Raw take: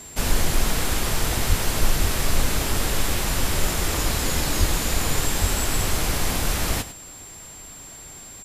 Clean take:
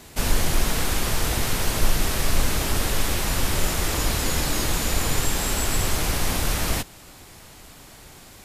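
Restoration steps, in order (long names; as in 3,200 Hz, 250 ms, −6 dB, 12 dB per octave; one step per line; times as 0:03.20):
notch filter 7,400 Hz, Q 30
high-pass at the plosives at 0:01.48/0:02.01/0:04.59/0:05.40
echo removal 101 ms −14 dB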